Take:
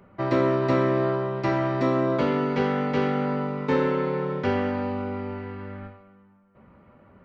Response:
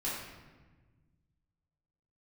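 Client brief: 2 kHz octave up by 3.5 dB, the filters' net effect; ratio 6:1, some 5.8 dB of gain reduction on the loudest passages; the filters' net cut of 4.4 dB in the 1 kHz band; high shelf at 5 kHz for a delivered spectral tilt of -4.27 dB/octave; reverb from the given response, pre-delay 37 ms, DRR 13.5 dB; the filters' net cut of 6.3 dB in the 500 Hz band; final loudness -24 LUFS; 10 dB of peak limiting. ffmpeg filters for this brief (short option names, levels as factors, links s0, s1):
-filter_complex "[0:a]equalizer=f=500:t=o:g=-7.5,equalizer=f=1000:t=o:g=-5.5,equalizer=f=2000:t=o:g=7,highshelf=f=5000:g=-5,acompressor=threshold=0.0447:ratio=6,alimiter=level_in=1.58:limit=0.0631:level=0:latency=1,volume=0.631,asplit=2[s0][s1];[1:a]atrim=start_sample=2205,adelay=37[s2];[s1][s2]afir=irnorm=-1:irlink=0,volume=0.126[s3];[s0][s3]amix=inputs=2:normalize=0,volume=4.22"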